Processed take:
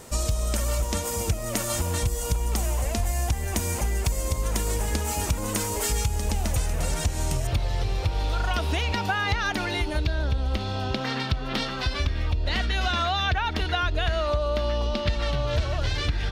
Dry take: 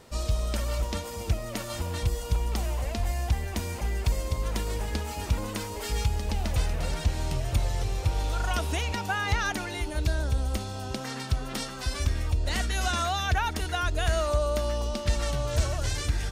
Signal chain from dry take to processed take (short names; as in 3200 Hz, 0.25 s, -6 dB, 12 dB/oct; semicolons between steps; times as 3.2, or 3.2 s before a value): resonant high shelf 5600 Hz +6 dB, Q 1.5, from 7.47 s -6.5 dB, from 10.04 s -14 dB; compressor 4:1, threshold -29 dBFS, peak gain reduction 9 dB; gain +7 dB